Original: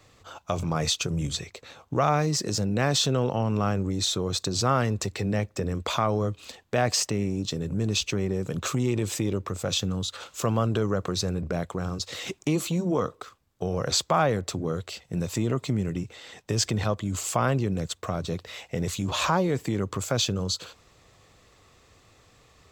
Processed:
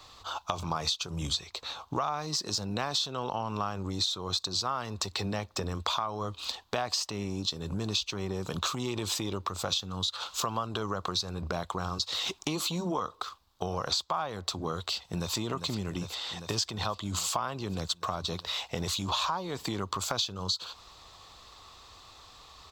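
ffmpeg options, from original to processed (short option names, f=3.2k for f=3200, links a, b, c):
-filter_complex "[0:a]asplit=2[a][b];[b]afade=t=in:st=14.93:d=0.01,afade=t=out:st=15.34:d=0.01,aecho=0:1:400|800|1200|1600|2000|2400|2800|3200|3600|4000|4400|4800:0.398107|0.29858|0.223935|0.167951|0.125964|0.0944727|0.0708545|0.0531409|0.0398557|0.0298918|0.0224188|0.0168141[c];[a][c]amix=inputs=2:normalize=0,equalizer=f=125:t=o:w=1:g=-10,equalizer=f=250:t=o:w=1:g=-5,equalizer=f=500:t=o:w=1:g=-7,equalizer=f=1k:t=o:w=1:g=9,equalizer=f=2k:t=o:w=1:g=-8,equalizer=f=4k:t=o:w=1:g=10,equalizer=f=8k:t=o:w=1:g=-4,acompressor=threshold=-33dB:ratio=6,volume=4.5dB"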